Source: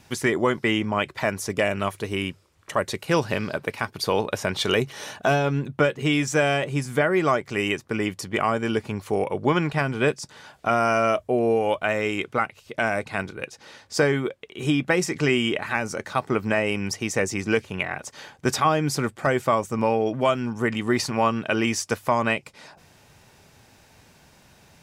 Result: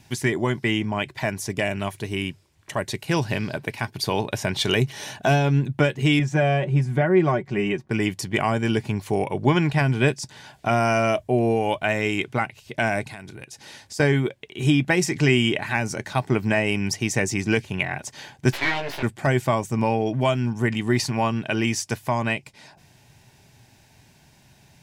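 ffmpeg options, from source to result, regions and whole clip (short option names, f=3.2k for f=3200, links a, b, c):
-filter_complex "[0:a]asettb=1/sr,asplit=3[a][b][c];[a]atrim=end=6.194[d];[b]atrim=start=6.19:end=7.91,asetpts=PTS-STARTPTS,afade=t=in:d=0.004:c=qsin,afade=t=out:st=1.716:d=0.004:c=qsin,lowpass=f=1.1k:p=1,aecho=1:1:5.4:0.53,atrim=end_sample=75852[e];[c]atrim=start=7.906[f];[d][e]acrossfade=d=0.004:c1=hsin:c2=qsin[g];[g][f]acrossfade=d=0.004:c1=qsin:c2=hsin,asettb=1/sr,asplit=3[h][i][j];[h]atrim=end=13.044[k];[i]atrim=start=13.04:end=14,asetpts=PTS-STARTPTS,afade=t=in:d=0.004:c=qsin,afade=t=out:st=0.956:d=0.004:c=qsin,equalizer=f=11k:w=0.68:g=7.5,acompressor=threshold=-38dB:ratio=4:attack=3.2:release=140:knee=1:detection=peak[l];[j]atrim=start=13.996[m];[k][l]acrossfade=d=0.004:c1=hsin:c2=qsin[n];[n][m]acrossfade=d=0.004:c1=qsin:c2=hsin,asettb=1/sr,asplit=3[o][p][q];[o]atrim=end=18.524[r];[p]atrim=start=18.52:end=19.03,asetpts=PTS-STARTPTS,afade=t=in:d=0.004:c=qsin,afade=t=out:st=0.506:d=0.004:c=qsin,aeval=exprs='abs(val(0))':c=same,acrossover=split=350 4900:gain=0.141 1 0.178[s][t][u];[s][t][u]amix=inputs=3:normalize=0,asplit=2[v][w];[w]adelay=18,volume=-4dB[x];[v][x]amix=inputs=2:normalize=0,atrim=end_sample=22491[y];[q]atrim=start=19.026[z];[r][y]acrossfade=d=0.004:c1=hsin:c2=qsin[aa];[aa][z]acrossfade=d=0.004:c1=qsin:c2=hsin,equalizer=f=125:t=o:w=0.33:g=8,equalizer=f=500:t=o:w=0.33:g=-9,equalizer=f=1.25k:t=o:w=0.33:g=-11,dynaudnorm=f=270:g=31:m=3dB"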